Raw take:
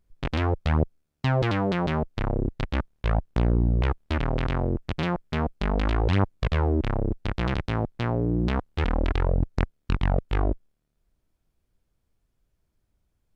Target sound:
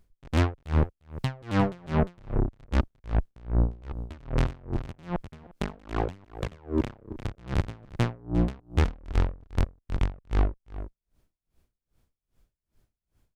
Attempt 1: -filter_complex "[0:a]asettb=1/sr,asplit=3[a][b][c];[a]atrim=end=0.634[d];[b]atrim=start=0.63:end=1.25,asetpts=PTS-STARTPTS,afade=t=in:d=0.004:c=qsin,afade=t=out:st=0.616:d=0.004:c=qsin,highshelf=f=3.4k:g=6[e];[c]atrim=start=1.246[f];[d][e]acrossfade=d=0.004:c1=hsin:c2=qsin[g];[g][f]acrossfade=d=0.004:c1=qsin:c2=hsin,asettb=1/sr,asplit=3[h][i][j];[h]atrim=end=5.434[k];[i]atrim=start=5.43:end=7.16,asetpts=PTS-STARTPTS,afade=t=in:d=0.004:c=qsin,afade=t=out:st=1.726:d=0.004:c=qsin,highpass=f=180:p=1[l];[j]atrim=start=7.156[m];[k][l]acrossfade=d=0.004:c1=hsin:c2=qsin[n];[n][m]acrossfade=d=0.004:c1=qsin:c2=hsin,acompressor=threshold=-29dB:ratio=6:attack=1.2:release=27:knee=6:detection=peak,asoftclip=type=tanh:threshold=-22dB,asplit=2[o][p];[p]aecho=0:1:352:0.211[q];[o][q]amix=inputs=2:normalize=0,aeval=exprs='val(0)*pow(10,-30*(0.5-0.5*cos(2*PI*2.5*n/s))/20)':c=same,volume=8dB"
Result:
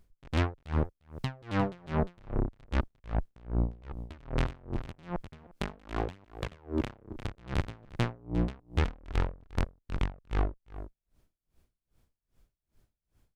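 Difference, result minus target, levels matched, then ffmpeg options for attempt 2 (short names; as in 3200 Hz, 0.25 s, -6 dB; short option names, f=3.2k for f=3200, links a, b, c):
compressor: peak gain reduction +9.5 dB
-filter_complex "[0:a]asettb=1/sr,asplit=3[a][b][c];[a]atrim=end=0.634[d];[b]atrim=start=0.63:end=1.25,asetpts=PTS-STARTPTS,afade=t=in:d=0.004:c=qsin,afade=t=out:st=0.616:d=0.004:c=qsin,highshelf=f=3.4k:g=6[e];[c]atrim=start=1.246[f];[d][e]acrossfade=d=0.004:c1=hsin:c2=qsin[g];[g][f]acrossfade=d=0.004:c1=qsin:c2=hsin,asettb=1/sr,asplit=3[h][i][j];[h]atrim=end=5.434[k];[i]atrim=start=5.43:end=7.16,asetpts=PTS-STARTPTS,afade=t=in:d=0.004:c=qsin,afade=t=out:st=1.726:d=0.004:c=qsin,highpass=f=180:p=1[l];[j]atrim=start=7.156[m];[k][l]acrossfade=d=0.004:c1=hsin:c2=qsin[n];[n][m]acrossfade=d=0.004:c1=qsin:c2=hsin,acompressor=threshold=-17.5dB:ratio=6:attack=1.2:release=27:knee=6:detection=peak,asoftclip=type=tanh:threshold=-22dB,asplit=2[o][p];[p]aecho=0:1:352:0.211[q];[o][q]amix=inputs=2:normalize=0,aeval=exprs='val(0)*pow(10,-30*(0.5-0.5*cos(2*PI*2.5*n/s))/20)':c=same,volume=8dB"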